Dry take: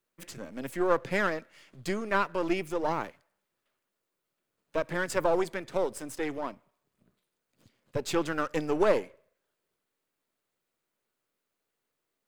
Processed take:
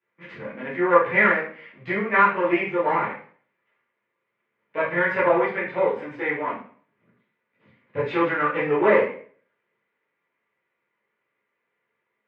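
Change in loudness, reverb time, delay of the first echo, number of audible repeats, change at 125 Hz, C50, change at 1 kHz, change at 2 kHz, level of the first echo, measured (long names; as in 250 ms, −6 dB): +8.5 dB, 0.50 s, no echo audible, no echo audible, +4.5 dB, 4.5 dB, +10.0 dB, +12.0 dB, no echo audible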